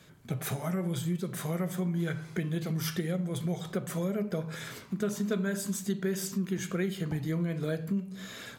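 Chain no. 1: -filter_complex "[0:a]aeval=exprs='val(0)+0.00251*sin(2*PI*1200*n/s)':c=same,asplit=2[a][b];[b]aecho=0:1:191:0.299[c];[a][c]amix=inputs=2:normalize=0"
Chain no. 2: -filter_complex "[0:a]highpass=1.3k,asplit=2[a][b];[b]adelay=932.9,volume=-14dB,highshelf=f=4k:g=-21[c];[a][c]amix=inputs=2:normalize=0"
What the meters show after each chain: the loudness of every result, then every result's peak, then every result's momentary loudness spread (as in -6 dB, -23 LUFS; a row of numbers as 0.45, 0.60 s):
-32.5, -42.5 LUFS; -18.0, -22.5 dBFS; 4, 9 LU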